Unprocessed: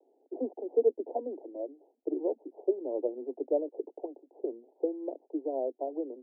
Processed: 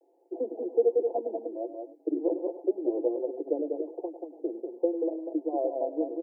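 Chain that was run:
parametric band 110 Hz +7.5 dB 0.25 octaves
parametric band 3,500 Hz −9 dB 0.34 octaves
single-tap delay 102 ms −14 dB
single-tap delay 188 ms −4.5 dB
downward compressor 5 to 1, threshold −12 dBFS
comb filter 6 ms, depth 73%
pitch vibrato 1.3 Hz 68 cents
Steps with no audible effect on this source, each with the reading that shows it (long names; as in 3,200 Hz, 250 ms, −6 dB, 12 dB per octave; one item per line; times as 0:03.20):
parametric band 110 Hz: nothing at its input below 230 Hz
parametric band 3,500 Hz: nothing at its input above 910 Hz
downward compressor, threshold −12 dBFS: peak of its input −15.0 dBFS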